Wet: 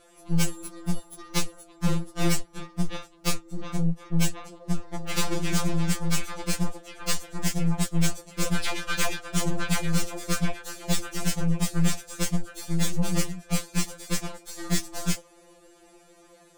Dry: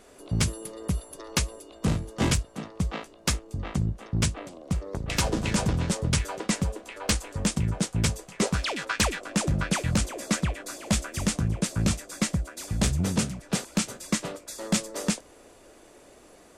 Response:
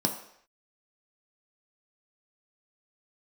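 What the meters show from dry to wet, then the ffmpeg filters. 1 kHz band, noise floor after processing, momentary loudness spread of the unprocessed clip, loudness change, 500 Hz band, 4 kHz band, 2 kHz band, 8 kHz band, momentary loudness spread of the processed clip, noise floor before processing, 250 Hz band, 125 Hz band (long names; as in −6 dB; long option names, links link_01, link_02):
−1.0 dB, −56 dBFS, 7 LU, −1.0 dB, −2.0 dB, −1.0 dB, −1.0 dB, −1.0 dB, 7 LU, −53 dBFS, 0.0 dB, −1.0 dB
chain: -af "aeval=exprs='0.224*(cos(1*acos(clip(val(0)/0.224,-1,1)))-cos(1*PI/2))+0.0447*(cos(8*acos(clip(val(0)/0.224,-1,1)))-cos(8*PI/2))':channel_layout=same,afftfilt=real='re*2.83*eq(mod(b,8),0)':imag='im*2.83*eq(mod(b,8),0)':win_size=2048:overlap=0.75"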